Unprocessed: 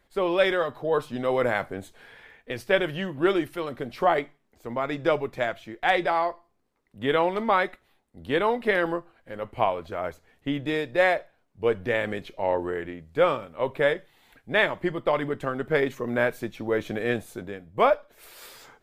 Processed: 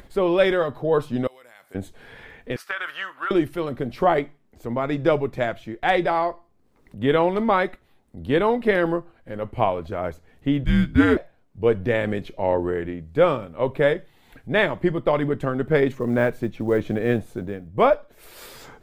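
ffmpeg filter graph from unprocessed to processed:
-filter_complex "[0:a]asettb=1/sr,asplit=3[a][b][c];[a]atrim=end=1.274[d];[b]atrim=start=1.27:end=1.75,asetpts=PTS-STARTPTS,afade=t=in:d=0.004:c=qsin,afade=t=out:st=0.476:d=0.004:c=qsin,aderivative,acompressor=threshold=-55dB:ratio=2:attack=3.2:release=140:knee=1:detection=peak[e];[c]atrim=start=1.746[f];[d][e]acrossfade=d=0.004:c1=hsin:c2=qsin[g];[g][f]acrossfade=d=0.004:c1=qsin:c2=hsin,asettb=1/sr,asplit=3[h][i][j];[h]atrim=end=2.564[k];[i]atrim=start=2.56:end=3.31,asetpts=PTS-STARTPTS,afade=t=in:d=0.004:c=qsin,afade=t=out:st=0.746:d=0.004:c=qsin,highpass=f=1.3k:t=q:w=4.9,acompressor=threshold=-24dB:ratio=12:attack=3.2:release=140:knee=1:detection=peak[l];[j]atrim=start=3.306[m];[k][l]acrossfade=d=0.004:c1=hsin:c2=qsin[n];[n][m]acrossfade=d=0.004:c1=qsin:c2=hsin,asettb=1/sr,asplit=3[o][p][q];[o]atrim=end=10.644[r];[p]atrim=start=10.64:end=11.17,asetpts=PTS-STARTPTS,afade=t=in:d=0.004:c=qsin,afade=t=out:st=0.526:d=0.004:c=qsin,afreqshift=-270,asplit=2[s][t];[t]adelay=16,volume=-9dB[u];[s][u]amix=inputs=2:normalize=0,atrim=end_sample=23373[v];[q]atrim=start=11.166[w];[r][v]acrossfade=d=0.004:c1=hsin:c2=qsin[x];[x][w]acrossfade=d=0.004:c1=qsin:c2=hsin,asettb=1/sr,asplit=3[y][z][aa];[y]atrim=end=15.924[ab];[z]atrim=start=15.92:end=17.68,asetpts=PTS-STARTPTS,afade=t=in:d=0.004:c=qsin,afade=t=out:st=1.756:d=0.004:c=qsin,highshelf=f=4k:g=-8,acrusher=bits=8:mode=log:mix=0:aa=0.000001[ac];[aa]atrim=start=17.676[ad];[ab][ac]acrossfade=d=0.004:c1=hsin:c2=qsin[ae];[ae][ad]acrossfade=d=0.004:c1=qsin:c2=hsin,lowshelf=f=410:g=10,acompressor=mode=upward:threshold=-36dB:ratio=2.5"

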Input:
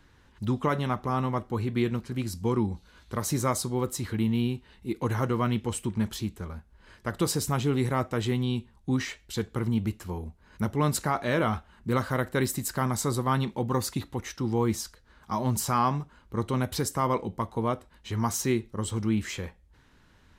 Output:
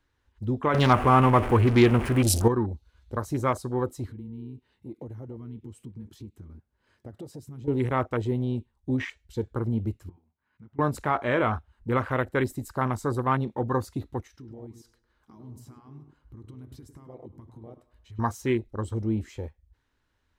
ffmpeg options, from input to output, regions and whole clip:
-filter_complex "[0:a]asettb=1/sr,asplit=3[a][b][c];[a]atrim=end=0.744[d];[b]atrim=start=0.74:end=2.48,asetpts=PTS-STARTPTS,afade=t=in:d=0.004:c=qsin,afade=t=out:st=1.736:d=0.004:c=qsin,aeval=exprs='val(0)+0.5*0.0224*sgn(val(0))':c=same,equalizer=f=9.5k:w=3.2:g=9,acontrast=77[e];[c]atrim=start=2.476[f];[d][e]acrossfade=d=0.004:c1=hsin:c2=qsin[g];[g][f]acrossfade=d=0.004:c1=qsin:c2=hsin,asettb=1/sr,asplit=3[h][i][j];[h]atrim=end=4.074[k];[i]atrim=start=4.07:end=7.68,asetpts=PTS-STARTPTS,afade=t=in:d=0.004:c=qsin,afade=t=out:st=3.606:d=0.004:c=qsin,lowshelf=f=220:g=11,acompressor=threshold=-35dB:ratio=5:attack=3.2:release=140:knee=1:detection=peak,highpass=140[l];[j]atrim=start=7.676[m];[k][l]acrossfade=d=0.004:c1=hsin:c2=qsin[n];[n][m]acrossfade=d=0.004:c1=qsin:c2=hsin,asettb=1/sr,asplit=3[o][p][q];[o]atrim=end=10.094[r];[p]atrim=start=10.09:end=10.79,asetpts=PTS-STARTPTS,afade=t=in:d=0.004:c=qsin,afade=t=out:st=0.696:d=0.004:c=qsin,acompressor=threshold=-41dB:ratio=4:attack=3.2:release=140:knee=1:detection=peak,highpass=150,lowpass=2.5k,equalizer=f=480:t=o:w=1.2:g=-12[s];[q]atrim=start=10.786[t];[r][s]acrossfade=d=0.004:c1=hsin:c2=qsin[u];[u][t]acrossfade=d=0.004:c1=qsin:c2=hsin,asettb=1/sr,asplit=3[v][w][x];[v]atrim=end=14.274[y];[w]atrim=start=14.27:end=18.19,asetpts=PTS-STARTPTS,afade=t=in:d=0.004:c=qsin,afade=t=out:st=3.916:d=0.004:c=qsin,acompressor=threshold=-40dB:ratio=8:attack=3.2:release=140:knee=1:detection=peak,asplit=2[z][aa];[aa]adelay=102,lowpass=f=1.5k:p=1,volume=-7dB,asplit=2[ab][ac];[ac]adelay=102,lowpass=f=1.5k:p=1,volume=0.51,asplit=2[ad][ae];[ae]adelay=102,lowpass=f=1.5k:p=1,volume=0.51,asplit=2[af][ag];[ag]adelay=102,lowpass=f=1.5k:p=1,volume=0.51,asplit=2[ah][ai];[ai]adelay=102,lowpass=f=1.5k:p=1,volume=0.51,asplit=2[aj][ak];[ak]adelay=102,lowpass=f=1.5k:p=1,volume=0.51[al];[z][ab][ad][af][ah][aj][al]amix=inputs=7:normalize=0,atrim=end_sample=172872[am];[x]atrim=start=18.186[an];[y][am]acrossfade=d=0.004:c1=hsin:c2=qsin[ao];[ao][an]acrossfade=d=0.004:c1=qsin:c2=hsin,afwtdn=0.0178,equalizer=f=180:t=o:w=0.55:g=-10.5,volume=2.5dB"

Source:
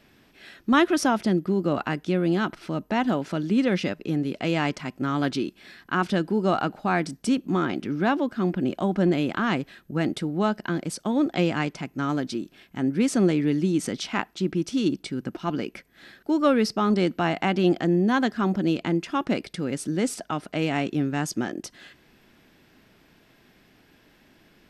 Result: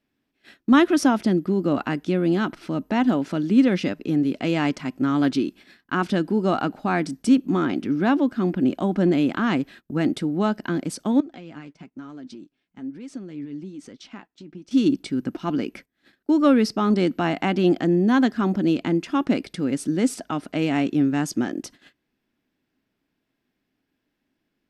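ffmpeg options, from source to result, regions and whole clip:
-filter_complex "[0:a]asettb=1/sr,asplit=3[a][b][c];[a]atrim=end=11.204[d];[b]atrim=start=11.2:end=14.71,asetpts=PTS-STARTPTS,afade=t=in:d=0.004:c=qsin,afade=t=out:st=3.506:d=0.004:c=qsin,lowpass=7.6k,acompressor=threshold=-38dB:ratio=3:attack=3.2:release=140:knee=1:detection=peak,flanger=delay=1.7:depth=6.1:regen=53:speed=1.1:shape=triangular[e];[c]atrim=start=14.706[f];[d][e]acrossfade=d=0.004:c1=hsin:c2=qsin[g];[g][f]acrossfade=d=0.004:c1=qsin:c2=hsin,agate=range=-21dB:threshold=-45dB:ratio=16:detection=peak,equalizer=f=270:t=o:w=0.53:g=7"

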